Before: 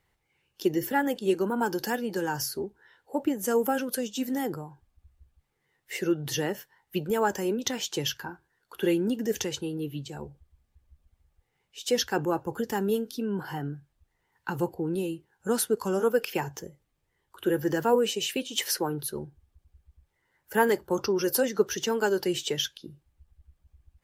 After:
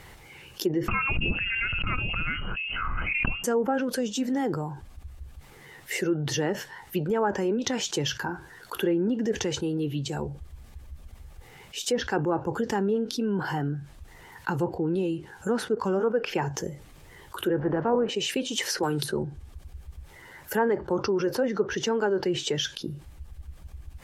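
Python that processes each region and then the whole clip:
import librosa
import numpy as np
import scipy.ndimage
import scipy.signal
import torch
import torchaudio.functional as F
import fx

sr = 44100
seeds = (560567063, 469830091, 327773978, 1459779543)

y = fx.chain(x, sr, fx.freq_invert(carrier_hz=3000),
    fx.tilt_eq(slope=-4.5),
    fx.pre_swell(db_per_s=23.0), at=(0.88, 3.44))
y = fx.spec_flatten(y, sr, power=0.67, at=(17.58, 18.08), fade=0.02)
y = fx.lowpass(y, sr, hz=1100.0, slope=12, at=(17.58, 18.08), fade=0.02)
y = fx.chain(y, sr, fx.peak_eq(hz=8600.0, db=14.5, octaves=0.52),
    fx.band_squash(depth_pct=100), at=(18.83, 19.23))
y = fx.dynamic_eq(y, sr, hz=3400.0, q=0.94, threshold_db=-46.0, ratio=4.0, max_db=-5)
y = fx.env_lowpass_down(y, sr, base_hz=1800.0, full_db=-21.0)
y = fx.env_flatten(y, sr, amount_pct=50)
y = y * 10.0 ** (-2.5 / 20.0)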